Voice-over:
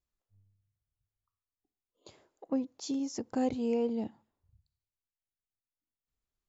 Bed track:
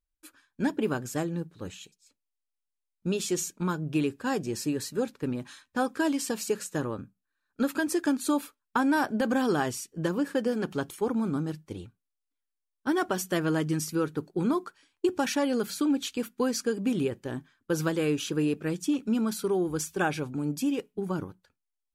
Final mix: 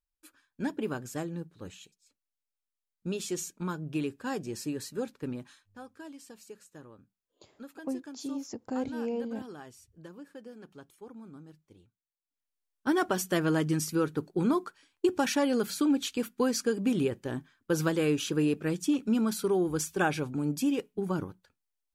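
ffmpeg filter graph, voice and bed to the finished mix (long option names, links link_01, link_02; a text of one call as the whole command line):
ffmpeg -i stem1.wav -i stem2.wav -filter_complex "[0:a]adelay=5350,volume=-3dB[link_01];[1:a]volume=14dB,afade=type=out:start_time=5.36:duration=0.35:silence=0.199526,afade=type=in:start_time=12.21:duration=0.42:silence=0.112202[link_02];[link_01][link_02]amix=inputs=2:normalize=0" out.wav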